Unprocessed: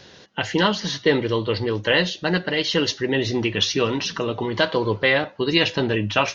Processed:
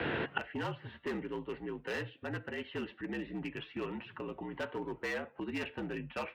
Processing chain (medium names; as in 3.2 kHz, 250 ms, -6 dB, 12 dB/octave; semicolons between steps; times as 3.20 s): mistuned SSB -60 Hz 170–2700 Hz; overload inside the chain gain 16 dB; inverted gate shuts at -33 dBFS, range -31 dB; trim +15 dB